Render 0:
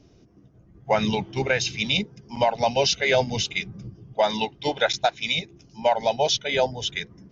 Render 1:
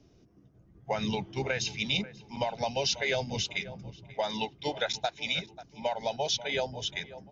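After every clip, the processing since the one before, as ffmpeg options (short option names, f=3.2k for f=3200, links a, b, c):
-filter_complex "[0:a]asplit=2[a][b];[b]adelay=537,lowpass=f=2.7k:p=1,volume=-19dB,asplit=2[c][d];[d]adelay=537,lowpass=f=2.7k:p=1,volume=0.37,asplit=2[e][f];[f]adelay=537,lowpass=f=2.7k:p=1,volume=0.37[g];[a][c][e][g]amix=inputs=4:normalize=0,acrossover=split=140|3000[h][i][j];[i]acompressor=threshold=-21dB:ratio=6[k];[h][k][j]amix=inputs=3:normalize=0,volume=-6dB"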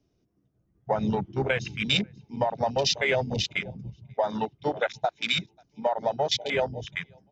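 -af "afwtdn=0.02,volume=5.5dB"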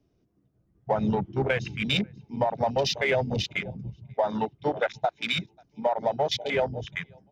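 -filter_complex "[0:a]highshelf=f=4.1k:g=-9,asplit=2[a][b];[b]asoftclip=type=tanh:threshold=-29.5dB,volume=-10.5dB[c];[a][c]amix=inputs=2:normalize=0"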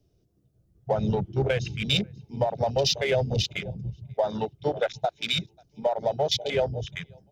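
-af "equalizer=f=250:t=o:w=1:g=-10,equalizer=f=1k:t=o:w=1:g=-10,equalizer=f=2k:t=o:w=1:g=-9,volume=6dB"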